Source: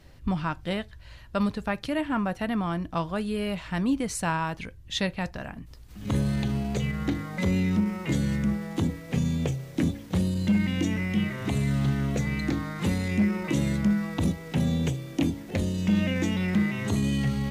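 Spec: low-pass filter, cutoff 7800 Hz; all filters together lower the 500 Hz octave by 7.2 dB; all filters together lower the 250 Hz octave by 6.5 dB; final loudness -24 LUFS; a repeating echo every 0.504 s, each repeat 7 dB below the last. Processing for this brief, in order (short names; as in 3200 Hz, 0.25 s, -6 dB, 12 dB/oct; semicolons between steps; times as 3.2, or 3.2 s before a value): LPF 7800 Hz; bell 250 Hz -8 dB; bell 500 Hz -7 dB; feedback echo 0.504 s, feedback 45%, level -7 dB; gain +7 dB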